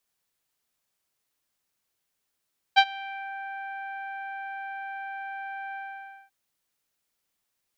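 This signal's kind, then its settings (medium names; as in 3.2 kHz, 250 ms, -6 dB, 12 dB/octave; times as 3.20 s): synth note saw G5 24 dB/octave, low-pass 2 kHz, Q 1.7, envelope 1 oct, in 0.54 s, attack 23 ms, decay 0.06 s, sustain -23 dB, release 0.55 s, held 2.99 s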